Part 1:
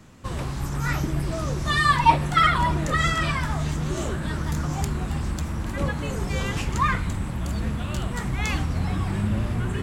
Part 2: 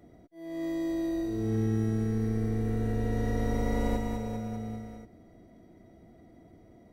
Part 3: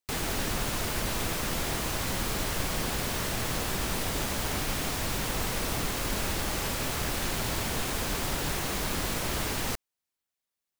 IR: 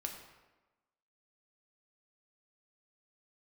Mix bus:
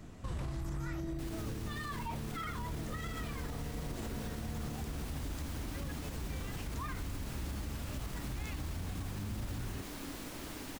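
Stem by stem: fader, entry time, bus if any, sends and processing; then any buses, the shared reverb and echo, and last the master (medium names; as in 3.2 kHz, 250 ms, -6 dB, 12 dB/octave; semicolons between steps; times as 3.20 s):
0.75 s -6 dB -> 0.96 s -17 dB, 0.00 s, no send, bass shelf 100 Hz +10.5 dB
-2.5 dB, 0.00 s, no send, compression, threshold -36 dBFS, peak gain reduction 12 dB
-15.0 dB, 1.10 s, no send, peaking EQ 280 Hz +11.5 dB 0.45 oct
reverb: none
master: peak limiter -31 dBFS, peak gain reduction 14.5 dB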